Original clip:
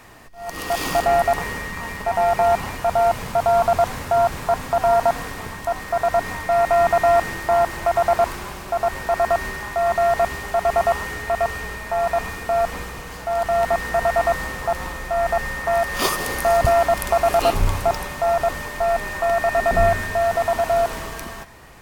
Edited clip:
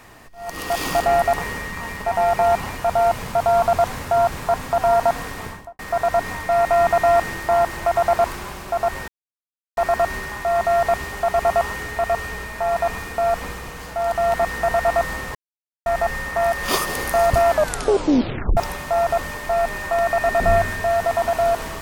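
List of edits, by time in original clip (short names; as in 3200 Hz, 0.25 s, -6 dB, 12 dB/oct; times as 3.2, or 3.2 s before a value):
5.45–5.79 studio fade out
9.08 insert silence 0.69 s
14.66–15.17 mute
16.81 tape stop 1.07 s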